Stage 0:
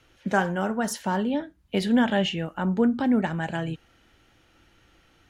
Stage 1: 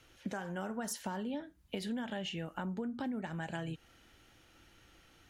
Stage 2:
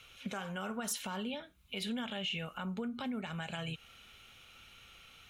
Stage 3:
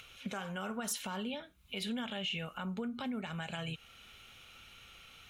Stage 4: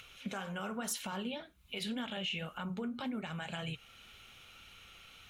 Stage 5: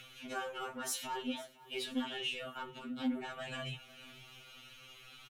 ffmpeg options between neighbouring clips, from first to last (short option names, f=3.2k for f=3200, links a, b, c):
-af "highshelf=f=5k:g=7,alimiter=limit=-18dB:level=0:latency=1:release=360,acompressor=threshold=-33dB:ratio=4,volume=-3.5dB"
-af "superequalizer=6b=0.316:10b=2:12b=3.16:13b=2.51,alimiter=level_in=5.5dB:limit=-24dB:level=0:latency=1:release=52,volume=-5.5dB,highshelf=f=5.3k:g=6"
-af "acompressor=mode=upward:threshold=-51dB:ratio=2.5"
-af "flanger=delay=0.6:depth=9.3:regen=-68:speed=1.9:shape=triangular,volume=4dB"
-af "asoftclip=type=tanh:threshold=-31dB,aecho=1:1:501|1002|1503:0.1|0.035|0.0123,afftfilt=real='re*2.45*eq(mod(b,6),0)':imag='im*2.45*eq(mod(b,6),0)':win_size=2048:overlap=0.75,volume=3.5dB"